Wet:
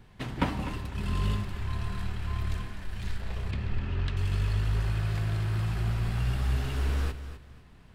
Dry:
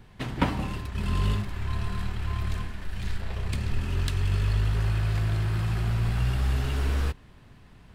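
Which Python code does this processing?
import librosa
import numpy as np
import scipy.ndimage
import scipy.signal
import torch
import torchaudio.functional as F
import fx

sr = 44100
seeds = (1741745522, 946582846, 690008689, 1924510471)

p1 = fx.lowpass(x, sr, hz=3300.0, slope=12, at=(3.51, 4.17))
p2 = p1 + fx.echo_feedback(p1, sr, ms=251, feedback_pct=24, wet_db=-12.0, dry=0)
y = F.gain(torch.from_numpy(p2), -3.0).numpy()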